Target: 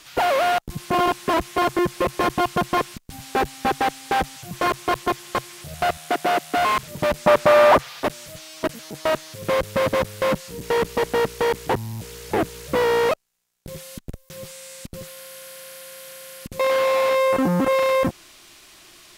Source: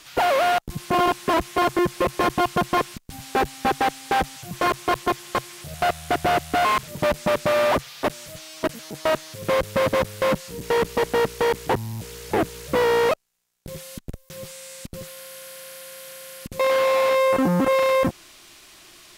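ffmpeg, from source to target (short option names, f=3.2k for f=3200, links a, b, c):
-filter_complex "[0:a]asettb=1/sr,asplit=3[a][b][c];[a]atrim=end=5.974[d];[b]atrim=start=5.97:end=6.57,asetpts=PTS-STARTPTS,afade=t=in:d=0.004:c=qsin,afade=t=out:st=0.596:d=0.004:c=qsin,highpass=f=200:w=0.5412,highpass=f=200:w=1.3066[e];[c]atrim=start=6.566[f];[d][e]acrossfade=d=0.004:c1=hsin:c2=qsin[g];[g][f]acrossfade=d=0.004:c1=qsin:c2=hsin,asettb=1/sr,asplit=3[h][i][j];[h]atrim=end=7.264[k];[i]atrim=start=7.26:end=8,asetpts=PTS-STARTPTS,afade=t=in:d=0.004:c=qsin,afade=t=out:st=0.736:d=0.004:c=qsin,equalizer=f=940:w=0.5:g=8[l];[j]atrim=start=7.996[m];[k][l]acrossfade=d=0.004:c1=hsin:c2=qsin[n];[n][m]acrossfade=d=0.004:c1=qsin:c2=hsin"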